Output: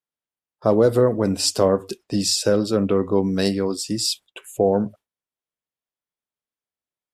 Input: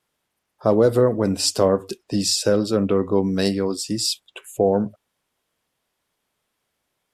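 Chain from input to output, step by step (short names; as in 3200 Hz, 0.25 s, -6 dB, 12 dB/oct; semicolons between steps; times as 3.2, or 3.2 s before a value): gate with hold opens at -36 dBFS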